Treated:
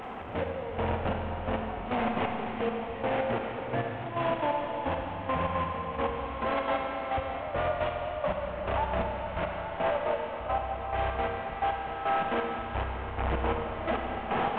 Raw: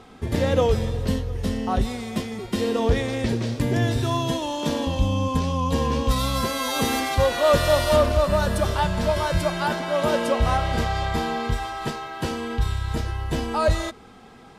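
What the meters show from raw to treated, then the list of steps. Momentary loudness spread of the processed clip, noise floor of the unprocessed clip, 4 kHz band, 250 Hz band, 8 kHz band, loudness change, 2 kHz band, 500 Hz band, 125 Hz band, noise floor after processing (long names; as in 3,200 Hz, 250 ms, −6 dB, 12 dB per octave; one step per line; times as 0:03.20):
4 LU, −46 dBFS, −14.0 dB, −10.5 dB, below −40 dB, −8.0 dB, −5.5 dB, −7.5 dB, −12.5 dB, −37 dBFS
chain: linear delta modulator 16 kbit/s, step −19 dBFS
parametric band 740 Hz +12 dB 1.3 octaves
brickwall limiter −17.5 dBFS, peak gain reduction 17.5 dB
gate pattern "....x....xx.x" 173 BPM −12 dB
four-comb reverb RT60 3.6 s, combs from 32 ms, DRR 1.5 dB
level −4.5 dB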